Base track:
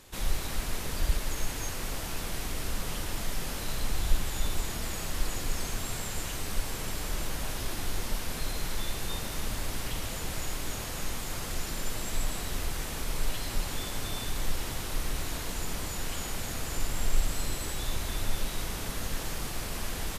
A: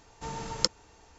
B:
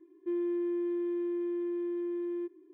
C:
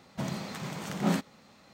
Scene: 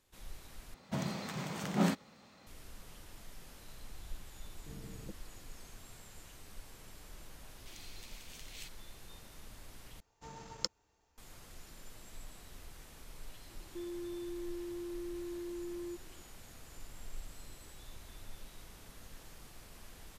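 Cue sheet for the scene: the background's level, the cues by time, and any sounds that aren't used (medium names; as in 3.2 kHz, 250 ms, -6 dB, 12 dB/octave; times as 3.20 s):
base track -19 dB
0.74 s: replace with C -2.5 dB
4.44 s: add A -6.5 dB + inverse Chebyshev low-pass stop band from 2.2 kHz, stop band 80 dB
7.48 s: add C -8 dB + steep high-pass 2.3 kHz
10.00 s: replace with A -10 dB + companding laws mixed up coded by A
13.49 s: add B -7 dB + peak limiter -32 dBFS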